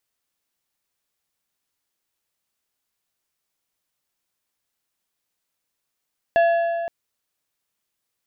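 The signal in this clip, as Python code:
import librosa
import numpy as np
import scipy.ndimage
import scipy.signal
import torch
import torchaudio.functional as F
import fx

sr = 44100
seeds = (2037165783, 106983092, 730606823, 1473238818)

y = fx.strike_metal(sr, length_s=0.52, level_db=-12.5, body='plate', hz=677.0, decay_s=2.44, tilt_db=10, modes=5)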